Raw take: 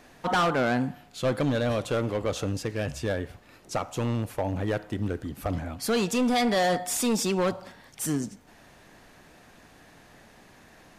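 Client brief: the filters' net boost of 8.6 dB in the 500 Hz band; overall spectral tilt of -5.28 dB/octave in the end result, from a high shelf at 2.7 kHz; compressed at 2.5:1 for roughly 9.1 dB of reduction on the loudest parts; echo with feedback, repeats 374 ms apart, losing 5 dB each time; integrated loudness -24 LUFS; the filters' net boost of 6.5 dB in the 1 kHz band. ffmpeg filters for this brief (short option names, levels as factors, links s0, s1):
-af "equalizer=f=500:t=o:g=8.5,equalizer=f=1000:t=o:g=6,highshelf=f=2700:g=-3.5,acompressor=threshold=0.0398:ratio=2.5,aecho=1:1:374|748|1122|1496|1870|2244|2618:0.562|0.315|0.176|0.0988|0.0553|0.031|0.0173,volume=1.68"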